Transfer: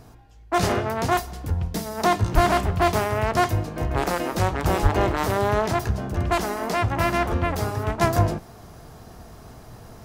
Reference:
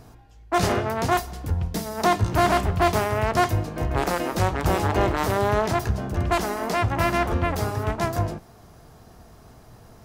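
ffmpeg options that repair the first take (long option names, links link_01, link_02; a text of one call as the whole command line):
ffmpeg -i in.wav -filter_complex "[0:a]asplit=3[link_01][link_02][link_03];[link_01]afade=type=out:start_time=2.34:duration=0.02[link_04];[link_02]highpass=frequency=140:width=0.5412,highpass=frequency=140:width=1.3066,afade=type=in:start_time=2.34:duration=0.02,afade=type=out:start_time=2.46:duration=0.02[link_05];[link_03]afade=type=in:start_time=2.46:duration=0.02[link_06];[link_04][link_05][link_06]amix=inputs=3:normalize=0,asplit=3[link_07][link_08][link_09];[link_07]afade=type=out:start_time=4.82:duration=0.02[link_10];[link_08]highpass=frequency=140:width=0.5412,highpass=frequency=140:width=1.3066,afade=type=in:start_time=4.82:duration=0.02,afade=type=out:start_time=4.94:duration=0.02[link_11];[link_09]afade=type=in:start_time=4.94:duration=0.02[link_12];[link_10][link_11][link_12]amix=inputs=3:normalize=0,asetnsamples=nb_out_samples=441:pad=0,asendcmd='8.01 volume volume -5dB',volume=0dB" out.wav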